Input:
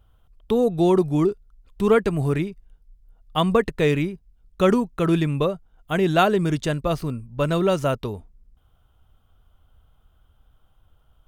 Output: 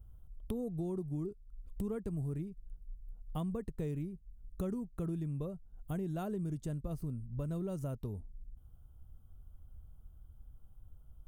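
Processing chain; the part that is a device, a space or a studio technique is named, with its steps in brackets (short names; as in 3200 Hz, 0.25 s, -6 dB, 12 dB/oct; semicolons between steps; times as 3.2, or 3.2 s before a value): EQ curve 200 Hz 0 dB, 2400 Hz -17 dB, 3800 Hz -17 dB, 9000 Hz -4 dB; ASMR close-microphone chain (low shelf 140 Hz +7 dB; compressor 5:1, threshold -35 dBFS, peak gain reduction 17.5 dB; high shelf 6600 Hz +5.5 dB); gain -2 dB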